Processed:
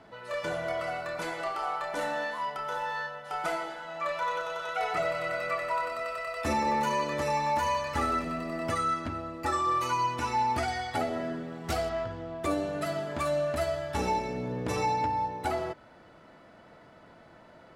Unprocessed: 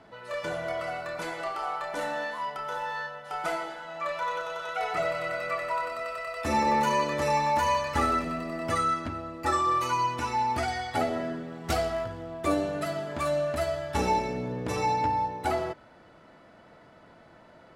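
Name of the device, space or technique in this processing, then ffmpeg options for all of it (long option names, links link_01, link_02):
clipper into limiter: -filter_complex "[0:a]asettb=1/sr,asplit=3[link_01][link_02][link_03];[link_01]atrim=end=11.894[link_04];[link_02]atrim=start=11.89:end=12.42,asetpts=PTS-STARTPTS,afade=type=in:duration=0.004:curve=qsin,afade=type=out:start_time=0.526:duration=0.004:curve=qsin,lowpass=6100[link_05];[link_03]atrim=start=12.416[link_06];[link_04][link_05]acrossfade=duration=0.004:curve1=hsin:curve2=qsin[link_07];[link_07][link_06]acrossfade=duration=0.004:curve1=qsin:curve2=hsin,asoftclip=type=hard:threshold=-16dB,alimiter=limit=-19.5dB:level=0:latency=1:release=415"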